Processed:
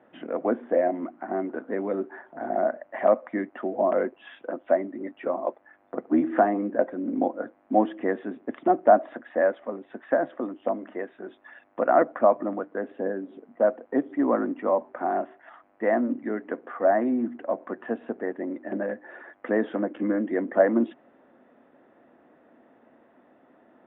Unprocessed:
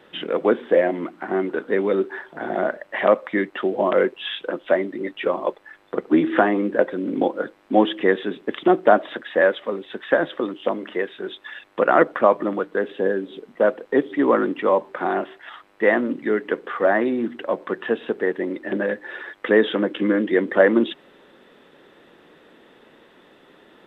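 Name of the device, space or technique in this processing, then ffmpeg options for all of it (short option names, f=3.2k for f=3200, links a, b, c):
bass cabinet: -af "highpass=81,equalizer=f=170:t=q:w=4:g=-6,equalizer=f=250:t=q:w=4:g=7,equalizer=f=420:t=q:w=4:g=-6,equalizer=f=680:t=q:w=4:g=9,lowpass=f=2.2k:w=0.5412,lowpass=f=2.2k:w=1.3066,equalizer=f=2.2k:t=o:w=1.9:g=-5,volume=-6dB"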